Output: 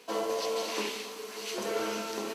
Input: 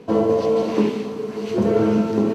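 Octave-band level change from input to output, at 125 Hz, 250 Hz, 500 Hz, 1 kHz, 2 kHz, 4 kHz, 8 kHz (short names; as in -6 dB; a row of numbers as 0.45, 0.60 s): under -25 dB, -21.0 dB, -14.0 dB, -7.5 dB, -1.0 dB, +3.0 dB, n/a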